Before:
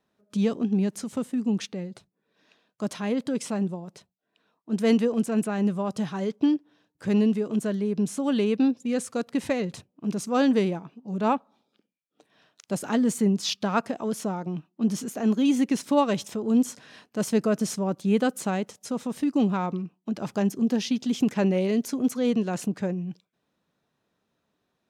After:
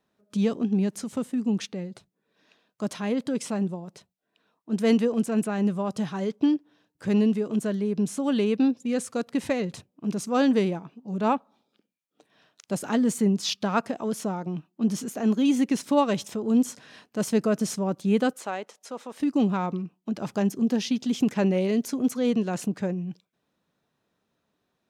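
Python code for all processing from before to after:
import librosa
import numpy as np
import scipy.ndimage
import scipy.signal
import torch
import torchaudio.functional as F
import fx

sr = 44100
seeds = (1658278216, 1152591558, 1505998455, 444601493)

y = fx.chain(x, sr, fx.highpass(hz=500.0, slope=12),
    fx.high_shelf(hz=4500.0, db=-8.5), at=(18.33, 19.2))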